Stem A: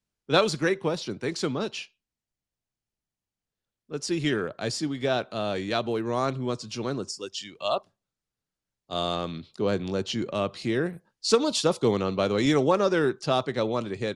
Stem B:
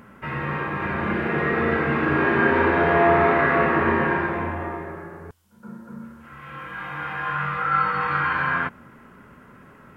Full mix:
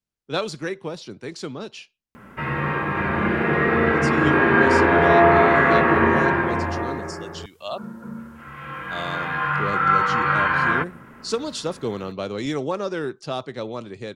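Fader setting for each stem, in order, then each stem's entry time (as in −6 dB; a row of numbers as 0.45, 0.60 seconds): −4.0, +3.0 decibels; 0.00, 2.15 seconds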